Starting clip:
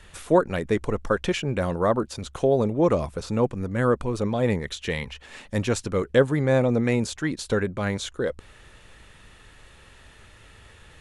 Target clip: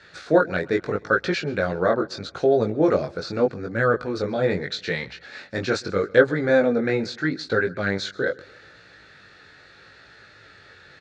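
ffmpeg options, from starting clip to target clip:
ffmpeg -i in.wav -filter_complex "[0:a]asettb=1/sr,asplit=3[link_01][link_02][link_03];[link_01]atrim=end=6.664[link_04];[link_02]atrim=start=6.66:end=7.61,asetpts=PTS-STARTPTS,afade=type=in:duration=0.004:curve=qsin,afade=type=out:start_time=0.946:duration=0.004:curve=qsin,highshelf=frequency=4000:gain=-6.5[link_05];[link_03]atrim=start=7.606[link_06];[link_04][link_05]acrossfade=duration=0.004:curve1=hsin:curve2=qsin[link_07];[link_07][link_06]acrossfade=duration=0.004:curve1=qsin:curve2=hsin,flanger=delay=17.5:depth=4.7:speed=0.79,highpass=150,equalizer=frequency=220:width_type=q:width=4:gain=-6,equalizer=frequency=1000:width_type=q:width=4:gain=-10,equalizer=frequency=1500:width_type=q:width=4:gain=9,equalizer=frequency=3000:width_type=q:width=4:gain=-9,equalizer=frequency=4300:width_type=q:width=4:gain=8,lowpass=frequency=5500:width=0.5412,lowpass=frequency=5500:width=1.3066,aecho=1:1:133|266|399:0.0708|0.0304|0.0131,volume=5.5dB" out.wav

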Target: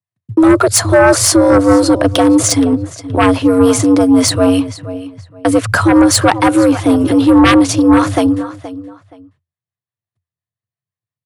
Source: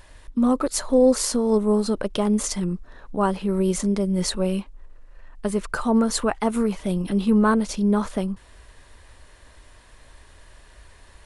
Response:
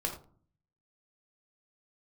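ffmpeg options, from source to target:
-filter_complex "[0:a]acrossover=split=490[link_01][link_02];[link_01]aeval=exprs='val(0)*(1-0.5/2+0.5/2*cos(2*PI*5.8*n/s))':channel_layout=same[link_03];[link_02]aeval=exprs='val(0)*(1-0.5/2-0.5/2*cos(2*PI*5.8*n/s))':channel_layout=same[link_04];[link_03][link_04]amix=inputs=2:normalize=0,agate=range=-60dB:threshold=-39dB:ratio=16:detection=peak,asplit=2[link_05][link_06];[link_06]adelay=473,lowpass=frequency=4800:poles=1,volume=-16dB,asplit=2[link_07][link_08];[link_08]adelay=473,lowpass=frequency=4800:poles=1,volume=0.25[link_09];[link_07][link_09]amix=inputs=2:normalize=0[link_10];[link_05][link_10]amix=inputs=2:normalize=0,afreqshift=85,aeval=exprs='0.422*sin(PI/2*2.82*val(0)/0.422)':channel_layout=same,volume=4dB"

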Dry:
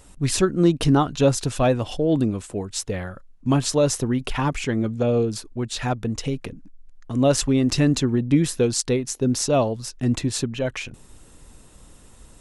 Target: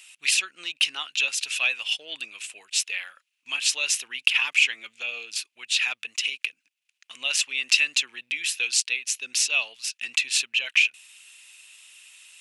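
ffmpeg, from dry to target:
ffmpeg -i in.wav -af "alimiter=limit=-11dB:level=0:latency=1:release=365,highpass=frequency=2600:width_type=q:width=5.5,volume=2.5dB" out.wav

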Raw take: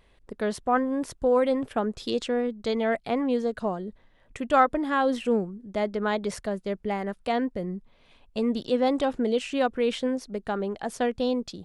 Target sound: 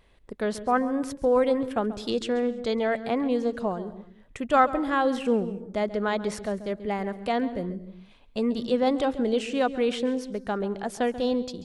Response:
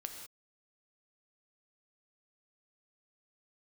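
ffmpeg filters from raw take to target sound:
-filter_complex "[0:a]asplit=2[link_01][link_02];[1:a]atrim=start_sample=2205,lowshelf=frequency=390:gain=10,adelay=136[link_03];[link_02][link_03]afir=irnorm=-1:irlink=0,volume=-14dB[link_04];[link_01][link_04]amix=inputs=2:normalize=0"

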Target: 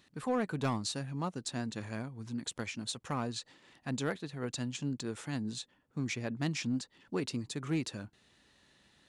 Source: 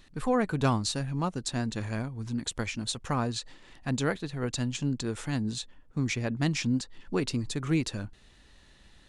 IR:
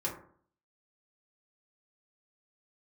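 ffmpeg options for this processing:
-filter_complex "[0:a]highpass=120,asplit=2[link_01][link_02];[link_02]aeval=exprs='0.0891*(abs(mod(val(0)/0.0891+3,4)-2)-1)':channel_layout=same,volume=-7dB[link_03];[link_01][link_03]amix=inputs=2:normalize=0,volume=-8.5dB"

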